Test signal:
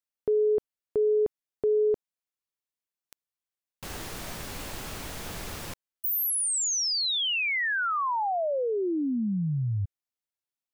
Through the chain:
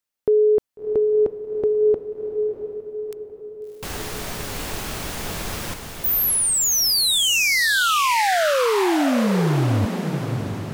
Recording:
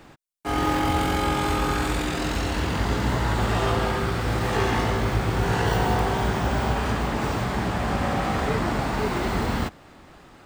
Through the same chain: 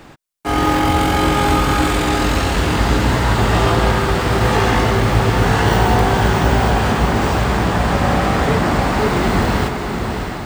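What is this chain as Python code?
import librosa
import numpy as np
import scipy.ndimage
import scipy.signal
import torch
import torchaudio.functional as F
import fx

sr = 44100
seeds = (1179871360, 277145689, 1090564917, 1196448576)

y = fx.echo_diffused(x, sr, ms=671, feedback_pct=51, wet_db=-6.0)
y = y * librosa.db_to_amplitude(7.5)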